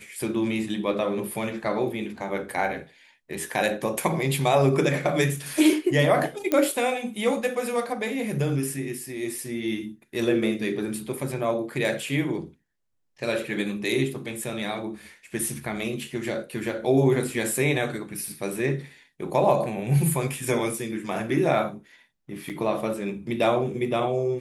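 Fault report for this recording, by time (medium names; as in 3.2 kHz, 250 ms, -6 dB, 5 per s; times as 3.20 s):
6.52 s: pop -10 dBFS
22.49–22.50 s: dropout 7.7 ms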